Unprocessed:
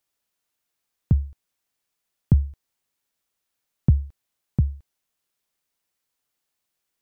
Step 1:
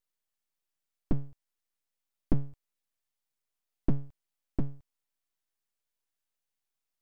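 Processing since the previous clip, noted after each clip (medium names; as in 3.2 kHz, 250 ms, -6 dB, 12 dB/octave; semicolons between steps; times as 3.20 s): full-wave rectifier; trim -6.5 dB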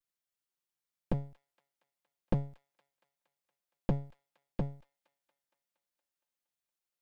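comb filter that takes the minimum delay 5.7 ms; feedback echo behind a high-pass 233 ms, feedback 66%, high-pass 1.6 kHz, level -19 dB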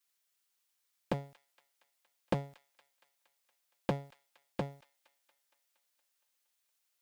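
high-pass 410 Hz 6 dB/octave; tilt shelf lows -3.5 dB, about 1.3 kHz; trim +8 dB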